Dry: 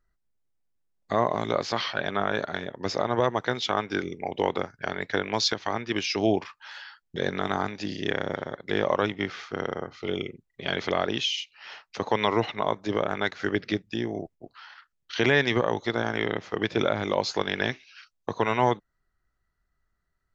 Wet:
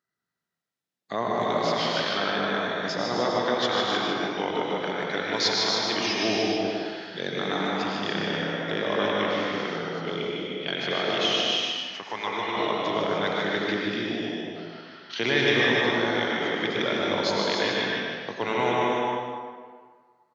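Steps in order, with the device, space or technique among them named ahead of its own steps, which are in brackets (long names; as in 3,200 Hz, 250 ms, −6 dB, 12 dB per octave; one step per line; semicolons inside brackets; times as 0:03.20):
PA in a hall (high-pass filter 130 Hz 24 dB per octave; parametric band 3,800 Hz +6 dB 1.6 octaves; single-tap delay 151 ms −6 dB; convolution reverb RT60 1.8 s, pre-delay 87 ms, DRR 0 dB)
0:11.70–0:12.57: octave-band graphic EQ 125/250/500/4,000 Hz −9/−7/−7/−8 dB
reverb whose tail is shaped and stops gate 330 ms rising, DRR 1.5 dB
level −5.5 dB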